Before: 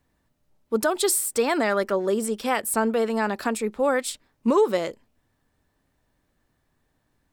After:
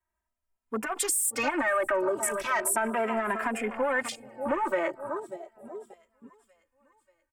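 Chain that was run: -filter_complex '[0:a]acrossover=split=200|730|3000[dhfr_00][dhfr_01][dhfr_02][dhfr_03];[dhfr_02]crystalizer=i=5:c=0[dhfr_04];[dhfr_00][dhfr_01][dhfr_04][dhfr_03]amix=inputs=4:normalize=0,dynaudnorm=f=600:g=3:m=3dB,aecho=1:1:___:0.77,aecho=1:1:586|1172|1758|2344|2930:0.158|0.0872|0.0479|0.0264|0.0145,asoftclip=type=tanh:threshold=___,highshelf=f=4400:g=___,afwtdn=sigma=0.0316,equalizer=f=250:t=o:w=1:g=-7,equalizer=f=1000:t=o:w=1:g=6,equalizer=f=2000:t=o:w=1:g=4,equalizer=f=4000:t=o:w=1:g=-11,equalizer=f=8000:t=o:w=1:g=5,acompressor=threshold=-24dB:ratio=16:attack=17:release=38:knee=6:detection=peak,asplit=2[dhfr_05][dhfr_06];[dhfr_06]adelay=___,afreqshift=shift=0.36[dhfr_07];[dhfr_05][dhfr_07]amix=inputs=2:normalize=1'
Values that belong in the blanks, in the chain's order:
3.2, -14.5dB, 4, 2.6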